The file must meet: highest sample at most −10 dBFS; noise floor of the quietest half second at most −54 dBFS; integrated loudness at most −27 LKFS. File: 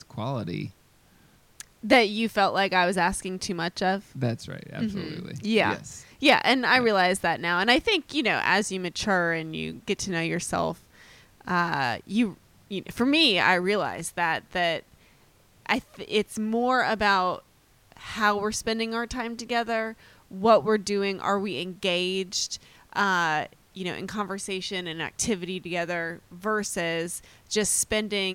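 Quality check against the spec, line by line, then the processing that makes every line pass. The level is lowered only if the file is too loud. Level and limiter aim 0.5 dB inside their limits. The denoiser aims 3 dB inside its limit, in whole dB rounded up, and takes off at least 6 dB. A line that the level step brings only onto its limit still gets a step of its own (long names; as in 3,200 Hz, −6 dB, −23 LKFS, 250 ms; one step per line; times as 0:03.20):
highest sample −7.5 dBFS: out of spec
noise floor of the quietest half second −60 dBFS: in spec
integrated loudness −25.5 LKFS: out of spec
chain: level −2 dB
brickwall limiter −10.5 dBFS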